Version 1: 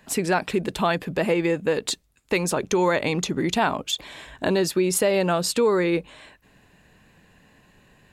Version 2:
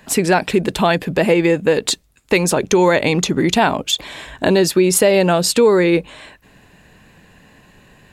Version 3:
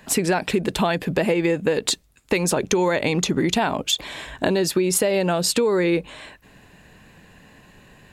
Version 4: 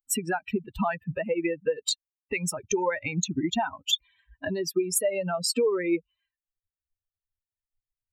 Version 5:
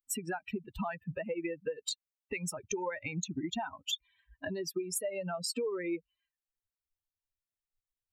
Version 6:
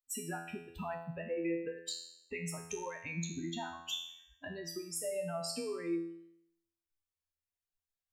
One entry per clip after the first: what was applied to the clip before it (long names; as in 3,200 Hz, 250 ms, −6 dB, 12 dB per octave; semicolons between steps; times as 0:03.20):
dynamic equaliser 1,200 Hz, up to −5 dB, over −38 dBFS, Q 2.8; level +8 dB
downward compressor, threshold −15 dBFS, peak gain reduction 7 dB; level −1.5 dB
spectral dynamics exaggerated over time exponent 3
downward compressor 2 to 1, threshold −30 dBFS, peak gain reduction 6.5 dB; level −5 dB
tuned comb filter 84 Hz, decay 0.73 s, harmonics all, mix 90%; level +8 dB